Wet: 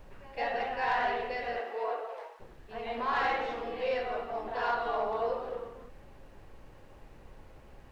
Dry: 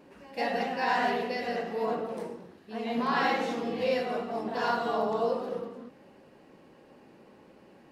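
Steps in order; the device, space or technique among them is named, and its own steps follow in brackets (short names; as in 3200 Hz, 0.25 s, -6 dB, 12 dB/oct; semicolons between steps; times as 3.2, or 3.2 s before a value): aircraft cabin announcement (BPF 490–3000 Hz; soft clip -20.5 dBFS, distortion -21 dB; brown noise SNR 16 dB); 1.58–2.39 HPF 230 Hz -> 700 Hz 24 dB/oct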